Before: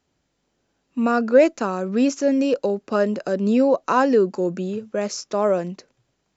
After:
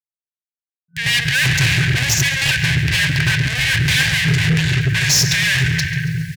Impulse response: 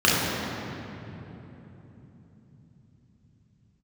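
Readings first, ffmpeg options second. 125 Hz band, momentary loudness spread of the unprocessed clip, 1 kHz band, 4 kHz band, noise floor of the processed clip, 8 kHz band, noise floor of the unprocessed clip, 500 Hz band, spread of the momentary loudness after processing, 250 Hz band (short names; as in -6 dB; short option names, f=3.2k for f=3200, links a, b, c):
+19.5 dB, 10 LU, -9.0 dB, +22.5 dB, under -85 dBFS, n/a, -73 dBFS, -17.0 dB, 4 LU, -3.5 dB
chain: -filter_complex "[0:a]agate=range=-33dB:threshold=-41dB:ratio=3:detection=peak,lowshelf=f=320:g=8.5,asplit=2[a][b];[1:a]atrim=start_sample=2205,asetrate=52920,aresample=44100[c];[b][c]afir=irnorm=-1:irlink=0,volume=-31dB[d];[a][d]amix=inputs=2:normalize=0,acrusher=bits=10:mix=0:aa=0.000001,asplit=2[e][f];[f]highpass=f=720:p=1,volume=39dB,asoftclip=type=tanh:threshold=0dB[g];[e][g]amix=inputs=2:normalize=0,lowpass=f=3.4k:p=1,volume=-6dB,equalizer=f=125:t=o:w=1:g=9,equalizer=f=250:t=o:w=1:g=9,equalizer=f=1k:t=o:w=1:g=-9,acompressor=mode=upward:threshold=-20dB:ratio=2.5,bandreject=f=50:t=h:w=6,bandreject=f=100:t=h:w=6,bandreject=f=150:t=h:w=6,afftfilt=real='re*(1-between(b*sr/4096,170,1500))':imag='im*(1-between(b*sr/4096,170,1500))':win_size=4096:overlap=0.75,asoftclip=type=tanh:threshold=-14dB,highpass=91,aecho=1:1:139|278|417|556|695:0.178|0.0925|0.0481|0.025|0.013,volume=4.5dB"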